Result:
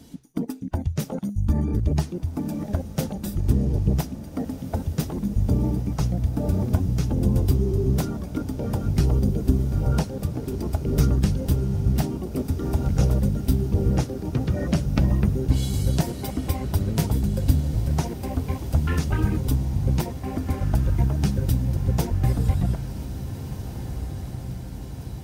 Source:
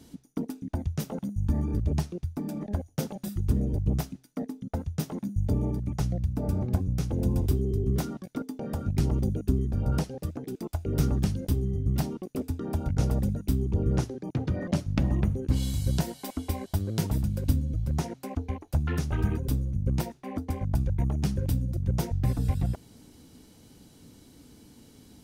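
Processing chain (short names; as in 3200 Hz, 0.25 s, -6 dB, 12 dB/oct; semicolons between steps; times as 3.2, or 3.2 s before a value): bin magnitudes rounded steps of 15 dB; diffused feedback echo 1.736 s, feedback 64%, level -11 dB; gain +5 dB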